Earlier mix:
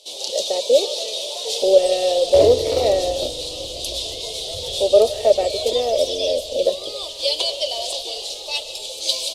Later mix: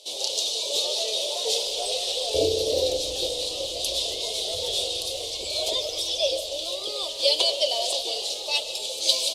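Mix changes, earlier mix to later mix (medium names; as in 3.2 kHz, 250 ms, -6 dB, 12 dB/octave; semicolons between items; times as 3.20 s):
speech: muted; second sound: add four-pole ladder low-pass 610 Hz, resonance 40%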